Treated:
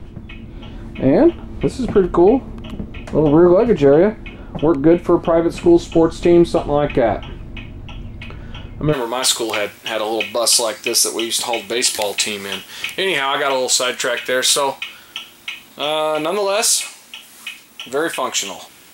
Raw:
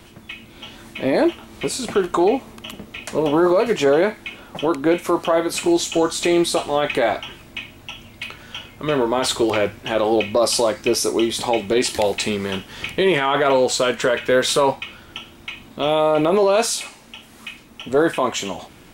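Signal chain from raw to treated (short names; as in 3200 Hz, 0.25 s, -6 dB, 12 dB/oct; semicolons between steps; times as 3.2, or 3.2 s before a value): tilt -4 dB/oct, from 8.92 s +3 dB/oct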